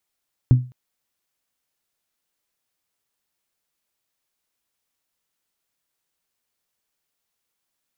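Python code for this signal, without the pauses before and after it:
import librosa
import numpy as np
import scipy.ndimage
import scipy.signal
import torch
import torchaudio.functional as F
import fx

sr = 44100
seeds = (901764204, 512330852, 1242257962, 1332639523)

y = fx.strike_glass(sr, length_s=0.21, level_db=-6, body='bell', hz=125.0, decay_s=0.32, tilt_db=11.5, modes=5)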